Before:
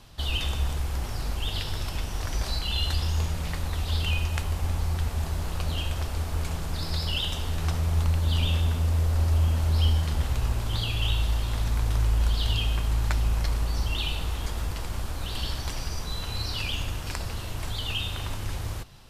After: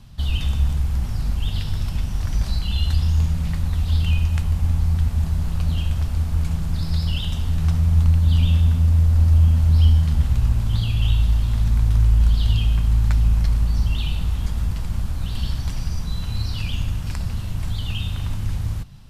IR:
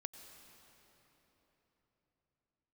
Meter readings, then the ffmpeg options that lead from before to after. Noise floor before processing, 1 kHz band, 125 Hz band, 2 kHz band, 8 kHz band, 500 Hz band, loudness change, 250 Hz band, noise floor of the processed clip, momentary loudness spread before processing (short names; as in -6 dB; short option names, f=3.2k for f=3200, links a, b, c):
-34 dBFS, -3.0 dB, +8.5 dB, -2.5 dB, -2.5 dB, -4.5 dB, +7.0 dB, +7.5 dB, -27 dBFS, 9 LU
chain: -af "lowshelf=f=270:t=q:w=1.5:g=10,volume=-2.5dB"